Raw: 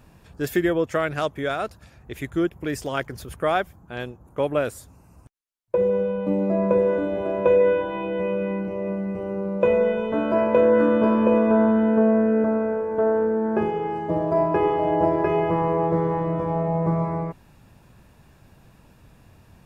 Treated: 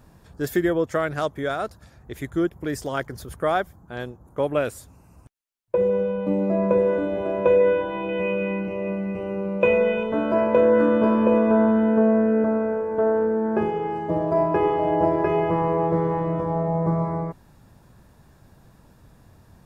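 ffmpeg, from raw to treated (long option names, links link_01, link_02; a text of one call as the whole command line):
ffmpeg -i in.wav -af "asetnsamples=nb_out_samples=441:pad=0,asendcmd='4.49 equalizer g 1;8.09 equalizer g 10.5;10.03 equalizer g -1;16.41 equalizer g -9',equalizer=frequency=2600:width_type=o:width=0.49:gain=-8" out.wav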